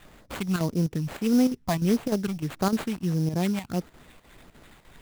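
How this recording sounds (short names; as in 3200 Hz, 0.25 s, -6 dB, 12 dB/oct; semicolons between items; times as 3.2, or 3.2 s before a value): phasing stages 8, 1.6 Hz, lowest notch 420–4000 Hz; aliases and images of a low sample rate 5600 Hz, jitter 20%; chopped level 3.3 Hz, depth 60%, duty 85%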